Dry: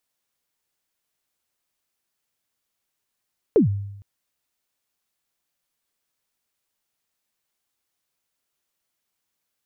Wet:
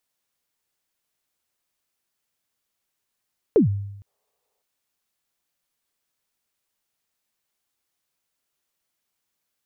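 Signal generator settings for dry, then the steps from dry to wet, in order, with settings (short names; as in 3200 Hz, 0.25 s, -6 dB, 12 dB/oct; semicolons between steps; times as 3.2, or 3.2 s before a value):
kick drum length 0.46 s, from 490 Hz, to 100 Hz, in 0.12 s, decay 0.87 s, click off, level -10 dB
spectral repair 4.09–4.59, 400–1300 Hz before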